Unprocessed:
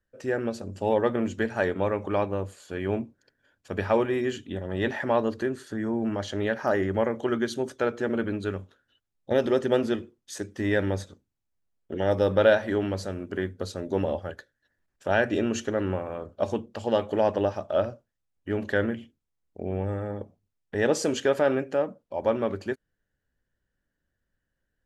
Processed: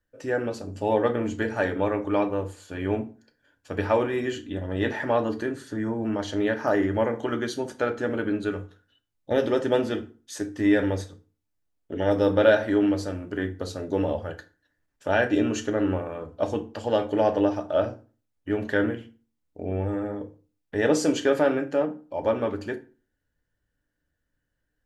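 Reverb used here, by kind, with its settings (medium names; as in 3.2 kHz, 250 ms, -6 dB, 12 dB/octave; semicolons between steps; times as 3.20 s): FDN reverb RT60 0.36 s, low-frequency decay 1.2×, high-frequency decay 0.75×, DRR 5 dB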